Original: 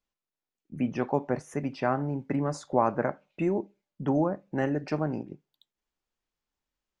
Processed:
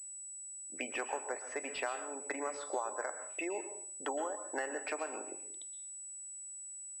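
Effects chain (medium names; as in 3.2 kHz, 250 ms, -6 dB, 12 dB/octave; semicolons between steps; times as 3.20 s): Bessel high-pass 610 Hz, order 6; spectral gate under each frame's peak -30 dB strong; peaking EQ 2.8 kHz +5.5 dB 1.6 oct; compression 6:1, threshold -42 dBFS, peak gain reduction 20 dB; plate-style reverb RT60 0.51 s, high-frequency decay 0.95×, pre-delay 105 ms, DRR 9 dB; class-D stage that switches slowly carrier 7.9 kHz; trim +6.5 dB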